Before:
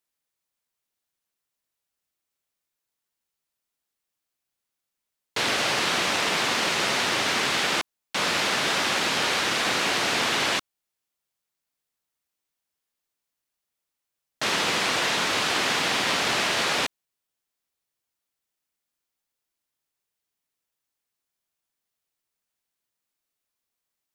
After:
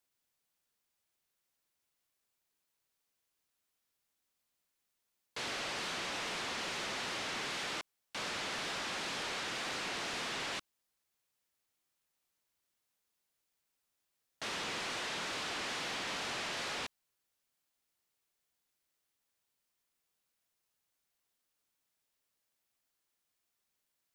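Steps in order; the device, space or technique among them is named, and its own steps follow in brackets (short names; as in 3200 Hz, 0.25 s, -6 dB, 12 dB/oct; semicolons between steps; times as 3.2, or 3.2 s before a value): compact cassette (soft clip -27.5 dBFS, distortion -9 dB; LPF 8500 Hz 12 dB/oct; wow and flutter; white noise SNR 40 dB); gain -8.5 dB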